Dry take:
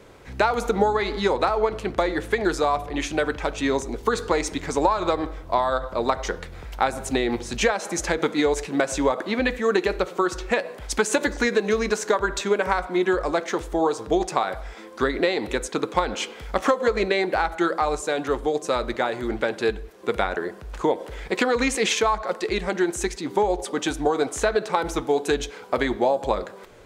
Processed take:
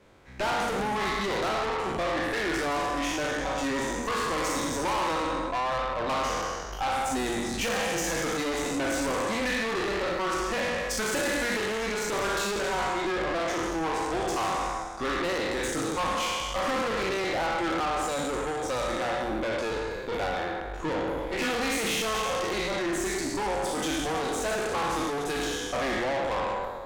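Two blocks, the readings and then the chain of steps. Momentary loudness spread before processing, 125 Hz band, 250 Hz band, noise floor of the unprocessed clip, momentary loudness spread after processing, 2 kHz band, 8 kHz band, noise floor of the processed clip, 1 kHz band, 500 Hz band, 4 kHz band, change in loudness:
5 LU, -3.5 dB, -5.0 dB, -41 dBFS, 3 LU, -2.5 dB, -1.5 dB, -35 dBFS, -3.5 dB, -6.5 dB, -1.0 dB, -4.5 dB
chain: spectral sustain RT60 2.21 s; spectral noise reduction 7 dB; treble shelf 5.4 kHz -4.5 dB; hum notches 60/120/180/240/300/360/420 Hz; valve stage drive 25 dB, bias 0.6; peaking EQ 440 Hz -5 dB 0.35 oct

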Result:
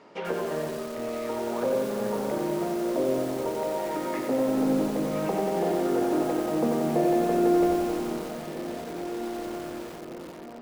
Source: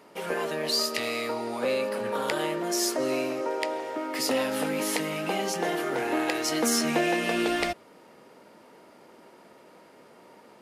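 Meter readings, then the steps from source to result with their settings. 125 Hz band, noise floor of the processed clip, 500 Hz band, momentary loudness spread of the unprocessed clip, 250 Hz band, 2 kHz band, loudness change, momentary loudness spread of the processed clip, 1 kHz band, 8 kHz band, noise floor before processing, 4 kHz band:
+5.5 dB, -41 dBFS, +3.0 dB, 6 LU, +4.5 dB, -9.0 dB, 0.0 dB, 12 LU, +0.5 dB, -10.5 dB, -54 dBFS, -12.0 dB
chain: low-pass that closes with the level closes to 690 Hz, closed at -25.5 dBFS; low-pass 6.8 kHz 24 dB/octave; treble shelf 2.6 kHz -3.5 dB; echo that smears into a reverb 1483 ms, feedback 56%, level -9 dB; bit-crushed delay 91 ms, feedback 80%, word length 7-bit, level -4 dB; trim +1.5 dB

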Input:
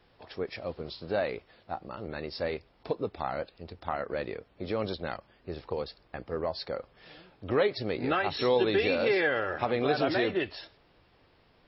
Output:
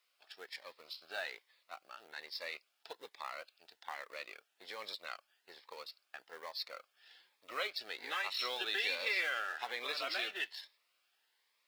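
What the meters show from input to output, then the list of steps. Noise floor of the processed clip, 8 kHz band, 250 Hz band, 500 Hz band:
-80 dBFS, no reading, -26.5 dB, -19.5 dB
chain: companding laws mixed up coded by A; high-pass 1.4 kHz 12 dB/octave; Shepard-style phaser rising 1.2 Hz; trim +1.5 dB

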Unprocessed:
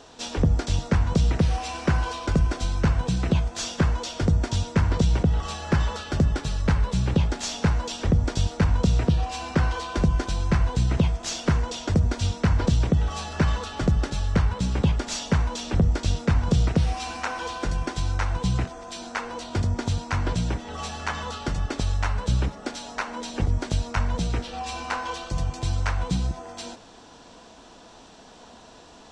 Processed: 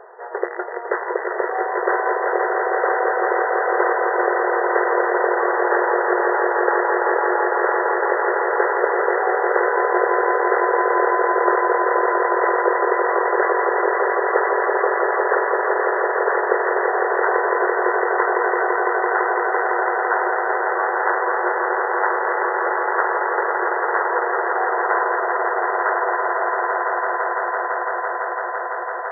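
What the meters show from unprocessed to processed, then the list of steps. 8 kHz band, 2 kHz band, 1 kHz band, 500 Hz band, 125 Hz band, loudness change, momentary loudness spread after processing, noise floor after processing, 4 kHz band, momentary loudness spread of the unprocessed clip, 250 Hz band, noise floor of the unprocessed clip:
under -40 dB, +15.0 dB, +16.0 dB, +15.0 dB, under -40 dB, +6.0 dB, 4 LU, -26 dBFS, under -40 dB, 8 LU, -2.0 dB, -49 dBFS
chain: rattle on loud lows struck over -19 dBFS, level -15 dBFS; echo with a slow build-up 168 ms, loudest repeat 8, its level -5 dB; FFT band-pass 350–2000 Hz; trim +8 dB

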